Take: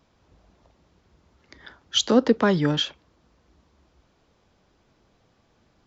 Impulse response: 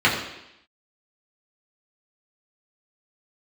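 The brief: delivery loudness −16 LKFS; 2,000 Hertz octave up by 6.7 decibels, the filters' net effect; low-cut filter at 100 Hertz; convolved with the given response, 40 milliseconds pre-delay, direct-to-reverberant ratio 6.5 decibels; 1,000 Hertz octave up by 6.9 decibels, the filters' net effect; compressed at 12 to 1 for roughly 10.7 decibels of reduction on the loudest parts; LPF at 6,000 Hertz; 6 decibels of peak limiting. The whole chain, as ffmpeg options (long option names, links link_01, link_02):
-filter_complex "[0:a]highpass=100,lowpass=6000,equalizer=frequency=1000:width_type=o:gain=7,equalizer=frequency=2000:width_type=o:gain=6,acompressor=threshold=-22dB:ratio=12,alimiter=limit=-18.5dB:level=0:latency=1,asplit=2[link_01][link_02];[1:a]atrim=start_sample=2205,adelay=40[link_03];[link_02][link_03]afir=irnorm=-1:irlink=0,volume=-27dB[link_04];[link_01][link_04]amix=inputs=2:normalize=0,volume=14.5dB"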